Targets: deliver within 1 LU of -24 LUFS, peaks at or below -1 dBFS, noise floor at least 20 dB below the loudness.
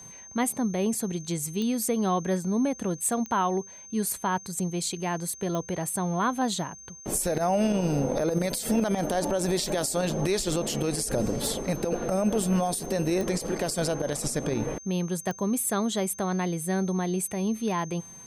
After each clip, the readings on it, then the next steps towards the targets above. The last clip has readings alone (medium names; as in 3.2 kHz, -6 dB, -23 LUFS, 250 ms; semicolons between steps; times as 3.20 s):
clicks found 6; steady tone 6.3 kHz; tone level -44 dBFS; loudness -27.5 LUFS; peak level -15.5 dBFS; loudness target -24.0 LUFS
-> de-click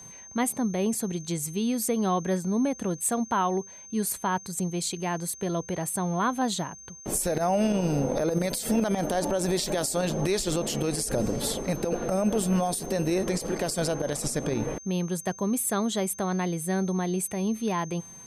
clicks found 0; steady tone 6.3 kHz; tone level -44 dBFS
-> band-stop 6.3 kHz, Q 30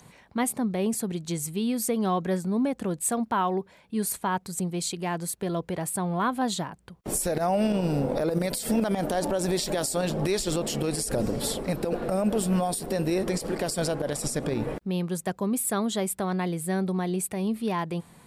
steady tone not found; loudness -28.0 LUFS; peak level -15.5 dBFS; loudness target -24.0 LUFS
-> trim +4 dB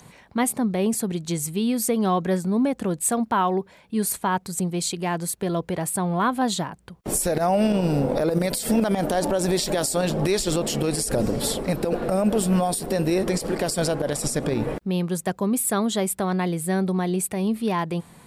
loudness -24.0 LUFS; peak level -11.5 dBFS; noise floor -52 dBFS